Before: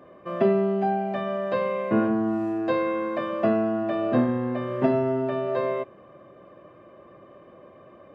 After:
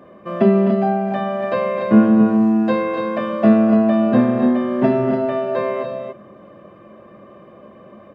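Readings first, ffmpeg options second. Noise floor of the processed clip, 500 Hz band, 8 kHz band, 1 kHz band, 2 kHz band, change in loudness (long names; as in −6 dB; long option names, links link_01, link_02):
−44 dBFS, +5.5 dB, can't be measured, +5.5 dB, +5.5 dB, +8.5 dB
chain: -filter_complex "[0:a]equalizer=frequency=210:width_type=o:width=0.21:gain=12,asplit=2[link_01][link_02];[link_02]aecho=0:1:256.6|288.6:0.355|0.447[link_03];[link_01][link_03]amix=inputs=2:normalize=0,volume=4.5dB"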